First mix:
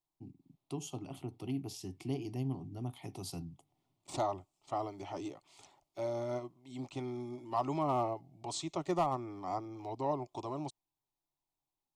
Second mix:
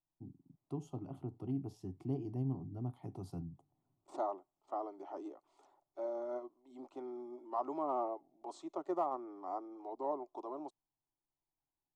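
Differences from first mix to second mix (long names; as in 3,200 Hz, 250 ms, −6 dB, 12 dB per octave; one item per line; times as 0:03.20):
second voice: add high-pass filter 320 Hz 24 dB per octave
master: add drawn EQ curve 190 Hz 0 dB, 1,500 Hz −5 dB, 2,300 Hz −19 dB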